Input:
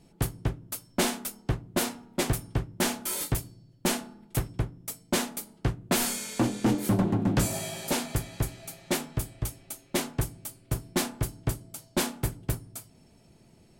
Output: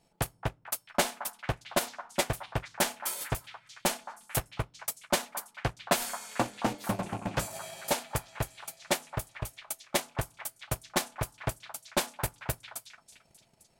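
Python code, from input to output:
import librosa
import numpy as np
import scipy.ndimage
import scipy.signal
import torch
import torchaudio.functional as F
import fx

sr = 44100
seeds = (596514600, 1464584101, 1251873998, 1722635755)

p1 = fx.rattle_buzz(x, sr, strikes_db=-28.0, level_db=-36.0)
p2 = fx.transient(p1, sr, attack_db=10, sustain_db=-6)
p3 = fx.low_shelf_res(p2, sr, hz=460.0, db=-8.0, q=1.5)
p4 = p3 + fx.echo_stepped(p3, sr, ms=222, hz=1100.0, octaves=0.7, feedback_pct=70, wet_db=-8.0, dry=0)
y = p4 * 10.0 ** (-6.0 / 20.0)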